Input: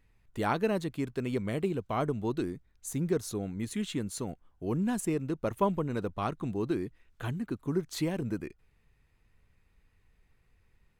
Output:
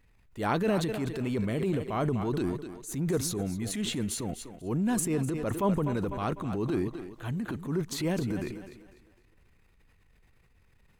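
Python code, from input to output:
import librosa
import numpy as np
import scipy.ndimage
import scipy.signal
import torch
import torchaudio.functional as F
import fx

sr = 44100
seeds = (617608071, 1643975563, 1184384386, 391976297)

y = fx.echo_thinned(x, sr, ms=250, feedback_pct=38, hz=180.0, wet_db=-13.5)
y = fx.transient(y, sr, attack_db=-7, sustain_db=7)
y = y * librosa.db_to_amplitude(2.5)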